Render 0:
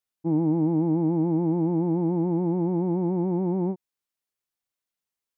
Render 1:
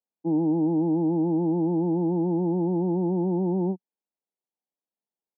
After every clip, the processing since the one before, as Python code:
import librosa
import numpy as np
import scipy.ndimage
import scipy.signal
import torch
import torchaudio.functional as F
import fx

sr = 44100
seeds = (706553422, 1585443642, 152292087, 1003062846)

y = scipy.signal.sosfilt(scipy.signal.ellip(3, 1.0, 40, [180.0, 890.0], 'bandpass', fs=sr, output='sos'), x)
y = F.gain(torch.from_numpy(y), 1.0).numpy()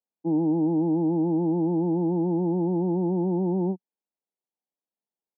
y = x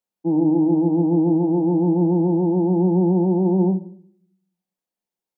y = fx.room_shoebox(x, sr, seeds[0], volume_m3=760.0, walls='furnished', distance_m=0.95)
y = F.gain(torch.from_numpy(y), 4.0).numpy()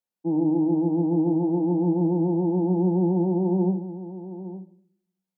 y = x + 10.0 ** (-13.5 / 20.0) * np.pad(x, (int(861 * sr / 1000.0), 0))[:len(x)]
y = F.gain(torch.from_numpy(y), -4.5).numpy()